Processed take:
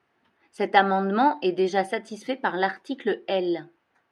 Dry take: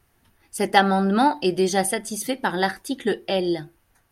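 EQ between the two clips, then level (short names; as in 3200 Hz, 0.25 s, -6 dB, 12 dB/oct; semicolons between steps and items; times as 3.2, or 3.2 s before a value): BPF 250–2900 Hz; -1.0 dB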